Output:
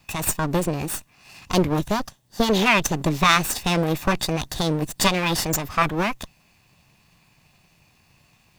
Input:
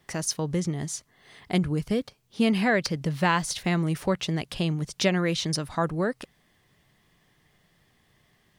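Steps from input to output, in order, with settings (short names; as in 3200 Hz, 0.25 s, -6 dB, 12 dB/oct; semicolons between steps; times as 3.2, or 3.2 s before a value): minimum comb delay 1.1 ms; formant shift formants +5 st; gain +7 dB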